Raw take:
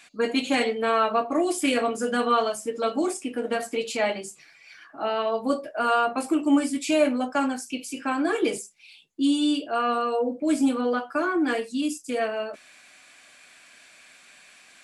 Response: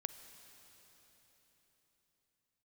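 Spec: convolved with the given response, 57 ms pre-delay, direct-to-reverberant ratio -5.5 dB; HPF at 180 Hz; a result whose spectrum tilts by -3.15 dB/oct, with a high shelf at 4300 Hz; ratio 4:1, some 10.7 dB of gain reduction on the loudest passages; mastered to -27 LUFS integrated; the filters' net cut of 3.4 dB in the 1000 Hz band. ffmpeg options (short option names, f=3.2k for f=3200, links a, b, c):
-filter_complex "[0:a]highpass=180,equalizer=f=1k:t=o:g=-4.5,highshelf=f=4.3k:g=-6,acompressor=threshold=-30dB:ratio=4,asplit=2[a][b];[1:a]atrim=start_sample=2205,adelay=57[c];[b][c]afir=irnorm=-1:irlink=0,volume=7.5dB[d];[a][d]amix=inputs=2:normalize=0"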